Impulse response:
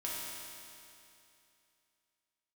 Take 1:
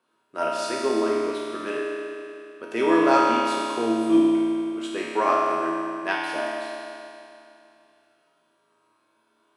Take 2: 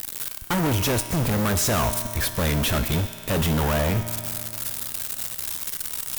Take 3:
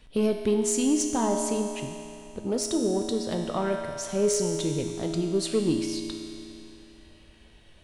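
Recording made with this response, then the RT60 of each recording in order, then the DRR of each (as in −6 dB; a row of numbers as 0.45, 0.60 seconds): 1; 2.7, 2.7, 2.7 seconds; −6.5, 8.5, 2.0 decibels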